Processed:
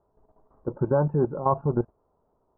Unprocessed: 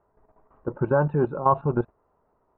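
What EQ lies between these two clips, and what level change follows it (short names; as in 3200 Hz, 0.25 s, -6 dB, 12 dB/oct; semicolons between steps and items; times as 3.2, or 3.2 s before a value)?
LPF 1000 Hz 12 dB/oct; air absorption 280 m; 0.0 dB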